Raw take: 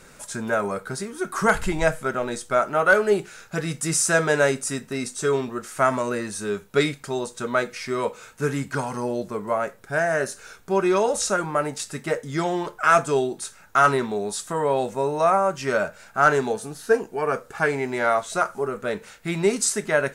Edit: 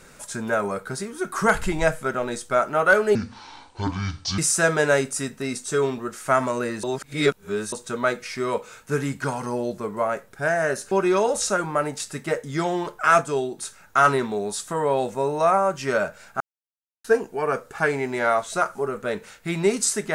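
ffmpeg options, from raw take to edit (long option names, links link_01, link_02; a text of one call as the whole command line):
ffmpeg -i in.wav -filter_complex "[0:a]asplit=10[link_01][link_02][link_03][link_04][link_05][link_06][link_07][link_08][link_09][link_10];[link_01]atrim=end=3.154[link_11];[link_02]atrim=start=3.15:end=3.89,asetpts=PTS-STARTPTS,asetrate=26460,aresample=44100[link_12];[link_03]atrim=start=3.886:end=6.342[link_13];[link_04]atrim=start=6.338:end=7.232,asetpts=PTS-STARTPTS,areverse[link_14];[link_05]atrim=start=7.228:end=10.422[link_15];[link_06]atrim=start=10.708:end=13.012[link_16];[link_07]atrim=start=13.008:end=13.382,asetpts=PTS-STARTPTS,volume=-3dB[link_17];[link_08]atrim=start=13.378:end=16.2,asetpts=PTS-STARTPTS,afade=type=out:start_time=2.818:duration=0.004:curve=hsin[link_18];[link_09]atrim=start=16.2:end=16.84,asetpts=PTS-STARTPTS,volume=0[link_19];[link_10]atrim=start=16.84,asetpts=PTS-STARTPTS,afade=type=in:duration=0.004:curve=hsin[link_20];[link_11][link_12]acrossfade=duration=0.004:curve1=hsin:curve2=hsin[link_21];[link_21][link_13]acrossfade=duration=0.004:curve1=hsin:curve2=hsin[link_22];[link_22][link_14]acrossfade=duration=0.004:curve1=hsin:curve2=hsin[link_23];[link_23][link_15]acrossfade=duration=0.004:curve1=hsin:curve2=hsin[link_24];[link_24][link_16]acrossfade=duration=0.004:curve1=hsin:curve2=hsin[link_25];[link_25][link_17]acrossfade=duration=0.004:curve1=hsin:curve2=hsin[link_26];[link_18][link_19][link_20]concat=n=3:v=0:a=1[link_27];[link_26][link_27]acrossfade=duration=0.004:curve1=hsin:curve2=hsin" out.wav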